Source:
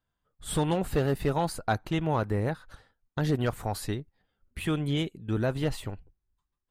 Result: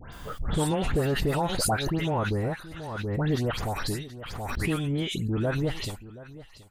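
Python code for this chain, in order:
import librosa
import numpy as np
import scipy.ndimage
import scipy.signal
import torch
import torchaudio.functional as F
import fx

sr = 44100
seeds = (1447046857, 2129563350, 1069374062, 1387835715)

p1 = fx.dispersion(x, sr, late='highs', ms=129.0, hz=2200.0)
p2 = p1 + fx.echo_single(p1, sr, ms=727, db=-17.5, dry=0)
y = fx.pre_swell(p2, sr, db_per_s=30.0)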